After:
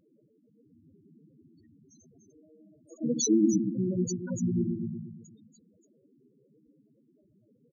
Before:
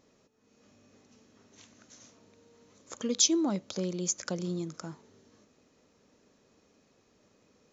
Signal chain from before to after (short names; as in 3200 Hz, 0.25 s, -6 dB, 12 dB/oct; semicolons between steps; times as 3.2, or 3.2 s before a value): harmoniser -7 st -4 dB, +5 st -6 dB, +7 st -16 dB; split-band echo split 2700 Hz, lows 0.119 s, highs 0.291 s, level -3.5 dB; loudest bins only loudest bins 4; gain +3.5 dB